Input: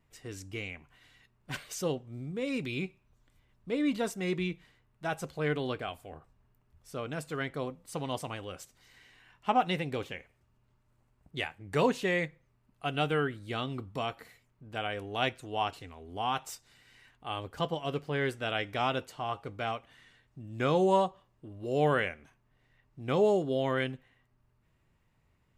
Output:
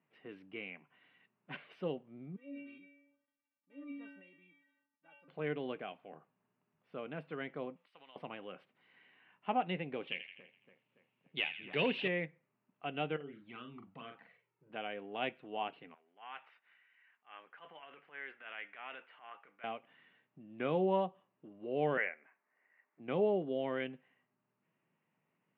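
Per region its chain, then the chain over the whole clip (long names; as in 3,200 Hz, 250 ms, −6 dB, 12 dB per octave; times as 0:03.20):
0:02.36–0:05.28: stiff-string resonator 280 Hz, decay 0.57 s, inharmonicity 0.008 + level that may fall only so fast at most 51 dB per second
0:07.76–0:08.16: meter weighting curve ITU-R 468 + downward compressor 5 to 1, threshold −49 dBFS
0:10.07–0:12.08: high shelf with overshoot 2,000 Hz +11 dB, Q 1.5 + hard clipping −18.5 dBFS + echo with a time of its own for lows and highs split 1,500 Hz, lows 284 ms, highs 83 ms, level −10 dB
0:13.16–0:14.70: flanger swept by the level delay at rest 2.5 ms, full sweep at −26 dBFS + downward compressor 4 to 1, threshold −39 dBFS + double-tracking delay 42 ms −6 dB
0:15.94–0:19.64: transient designer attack −11 dB, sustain +6 dB + resonant band-pass 1,800 Hz, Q 1.8
0:21.97–0:23.00: high-pass filter 450 Hz + high shelf with overshoot 2,800 Hz −11.5 dB, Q 3
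whole clip: elliptic band-pass filter 170–2,800 Hz, stop band 40 dB; dynamic equaliser 1,200 Hz, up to −5 dB, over −43 dBFS, Q 1.4; level −5 dB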